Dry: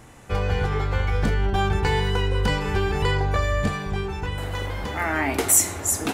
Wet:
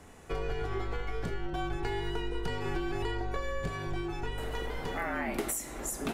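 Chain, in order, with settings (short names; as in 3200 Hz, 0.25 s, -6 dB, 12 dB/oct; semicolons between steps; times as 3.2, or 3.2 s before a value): compressor, threshold -24 dBFS, peak gain reduction 11.5 dB; bell 450 Hz +4 dB 0.8 oct; frequency shift -44 Hz; dynamic EQ 6600 Hz, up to -4 dB, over -43 dBFS, Q 0.92; gain -6 dB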